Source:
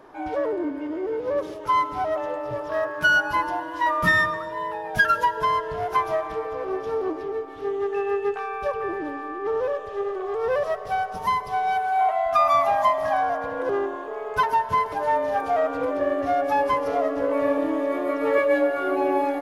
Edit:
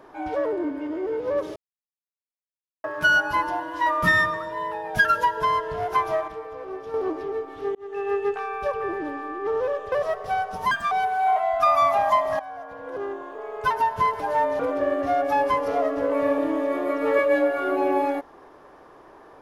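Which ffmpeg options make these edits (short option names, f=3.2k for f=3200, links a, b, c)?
-filter_complex "[0:a]asplit=11[a][b][c][d][e][f][g][h][i][j][k];[a]atrim=end=1.56,asetpts=PTS-STARTPTS,afade=t=out:st=1.556:d=0.004:c=hsin[l];[b]atrim=start=1.56:end=2.84,asetpts=PTS-STARTPTS,volume=0[m];[c]atrim=start=2.84:end=6.282,asetpts=PTS-STARTPTS,afade=t=in:d=0.004:c=hsin[n];[d]atrim=start=6.278:end=6.942,asetpts=PTS-STARTPTS,volume=-6.5dB[o];[e]atrim=start=6.938:end=7.75,asetpts=PTS-STARTPTS,afade=t=out:st=0.808:d=0.004:c=hsin[p];[f]atrim=start=7.75:end=9.922,asetpts=PTS-STARTPTS,afade=t=in:d=0.37[q];[g]atrim=start=10.528:end=11.324[r];[h]atrim=start=11.32:end=11.64,asetpts=PTS-STARTPTS,asetrate=69237,aresample=44100[s];[i]atrim=start=11.636:end=13.12,asetpts=PTS-STARTPTS,afade=t=out:st=1.48:d=0.004:c=hsin:silence=0.141254[t];[j]atrim=start=13.12:end=15.322,asetpts=PTS-STARTPTS,afade=t=in:d=1.6:silence=0.141254[u];[k]atrim=start=15.788[v];[l][m][n]concat=n=3:v=0:a=1[w];[w][o]acrossfade=d=0.004:c1=hsin:c2=hsin[x];[p][q]concat=n=2:v=0:a=1[y];[x][y]acrossfade=d=0.004:c1=hsin:c2=hsin[z];[z][r]acrossfade=d=0.004:c1=hsin:c2=hsin[aa];[aa][s]acrossfade=d=0.004:c1=hsin:c2=hsin[ab];[t][u]concat=n=2:v=0:a=1[ac];[ab][ac]acrossfade=d=0.004:c1=hsin:c2=hsin[ad];[ad][v]acrossfade=d=0.004:c1=hsin:c2=hsin"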